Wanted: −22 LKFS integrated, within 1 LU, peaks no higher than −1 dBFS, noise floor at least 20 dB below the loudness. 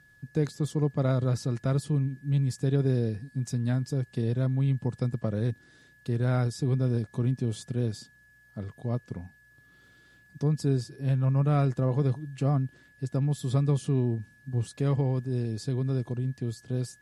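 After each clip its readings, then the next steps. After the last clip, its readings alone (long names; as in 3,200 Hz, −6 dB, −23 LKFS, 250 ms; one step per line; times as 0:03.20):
interfering tone 1,700 Hz; level of the tone −57 dBFS; integrated loudness −29.0 LKFS; sample peak −14.0 dBFS; target loudness −22.0 LKFS
→ notch filter 1,700 Hz, Q 30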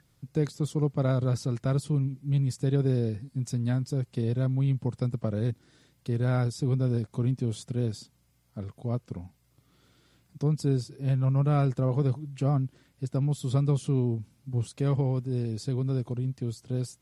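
interfering tone none found; integrated loudness −29.0 LKFS; sample peak −14.0 dBFS; target loudness −22.0 LKFS
→ level +7 dB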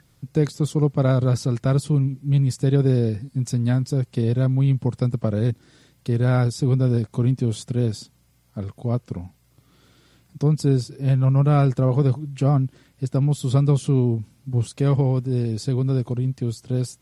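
integrated loudness −22.0 LKFS; sample peak −7.0 dBFS; background noise floor −60 dBFS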